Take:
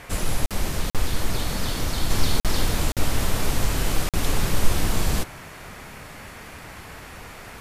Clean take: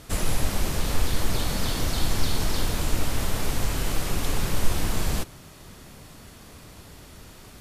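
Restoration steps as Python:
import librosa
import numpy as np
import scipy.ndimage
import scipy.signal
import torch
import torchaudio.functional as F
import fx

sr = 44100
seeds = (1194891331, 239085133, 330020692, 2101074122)

y = fx.fix_interpolate(x, sr, at_s=(0.46, 0.9, 2.4, 2.92, 4.09), length_ms=47.0)
y = fx.noise_reduce(y, sr, print_start_s=6.03, print_end_s=6.53, reduce_db=6.0)
y = fx.fix_level(y, sr, at_s=2.1, step_db=-3.0)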